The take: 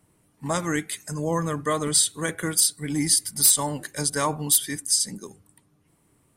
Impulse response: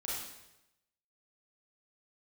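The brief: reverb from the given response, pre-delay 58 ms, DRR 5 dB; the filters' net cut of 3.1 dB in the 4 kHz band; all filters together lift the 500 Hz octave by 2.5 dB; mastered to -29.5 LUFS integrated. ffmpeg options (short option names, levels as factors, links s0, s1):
-filter_complex "[0:a]equalizer=f=500:t=o:g=3,equalizer=f=4000:t=o:g=-4,asplit=2[s0][s1];[1:a]atrim=start_sample=2205,adelay=58[s2];[s1][s2]afir=irnorm=-1:irlink=0,volume=0.422[s3];[s0][s3]amix=inputs=2:normalize=0,volume=0.422"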